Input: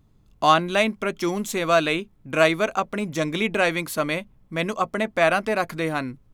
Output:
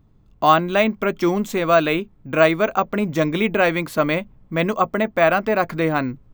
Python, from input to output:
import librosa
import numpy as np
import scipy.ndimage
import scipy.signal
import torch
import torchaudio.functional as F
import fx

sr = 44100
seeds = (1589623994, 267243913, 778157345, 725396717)

p1 = fx.high_shelf(x, sr, hz=3100.0, db=-10.0)
p2 = fx.rider(p1, sr, range_db=3, speed_s=0.5)
p3 = p1 + F.gain(torch.from_numpy(p2), -0.5).numpy()
p4 = np.repeat(scipy.signal.resample_poly(p3, 1, 2), 2)[:len(p3)]
y = F.gain(torch.from_numpy(p4), -1.0).numpy()